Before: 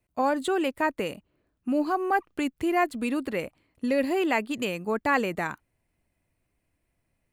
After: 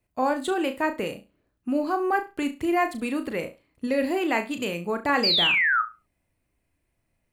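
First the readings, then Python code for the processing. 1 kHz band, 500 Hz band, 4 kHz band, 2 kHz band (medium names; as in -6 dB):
+1.0 dB, +0.5 dB, +14.0 dB, +5.5 dB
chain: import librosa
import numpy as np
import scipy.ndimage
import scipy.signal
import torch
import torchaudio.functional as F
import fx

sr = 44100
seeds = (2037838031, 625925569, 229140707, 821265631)

y = fx.spec_paint(x, sr, seeds[0], shape='fall', start_s=5.23, length_s=0.59, low_hz=1200.0, high_hz=5000.0, level_db=-22.0)
y = fx.room_flutter(y, sr, wall_m=6.0, rt60_s=0.26)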